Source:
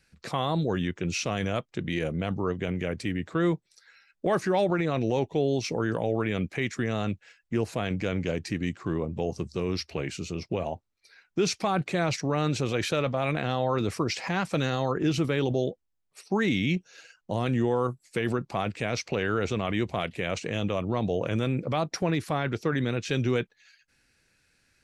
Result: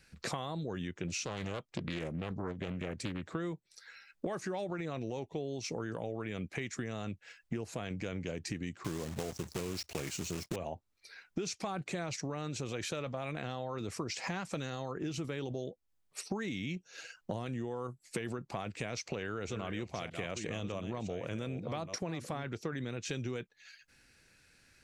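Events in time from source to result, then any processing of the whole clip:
1.08–3.27 Doppler distortion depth 0.61 ms
8.84–10.56 block floating point 3-bit
18.86–22.44 reverse delay 0.62 s, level -10 dB
whole clip: dynamic EQ 7100 Hz, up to +7 dB, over -56 dBFS, Q 1.7; compressor 16:1, threshold -37 dBFS; gain +3 dB

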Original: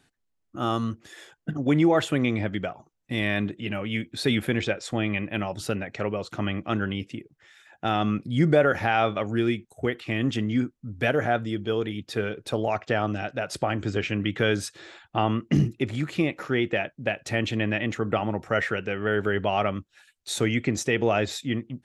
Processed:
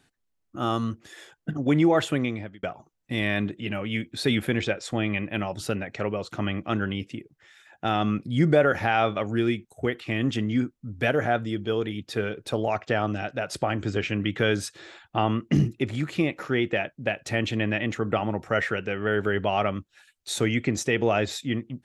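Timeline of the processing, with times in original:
2.1–2.63 fade out

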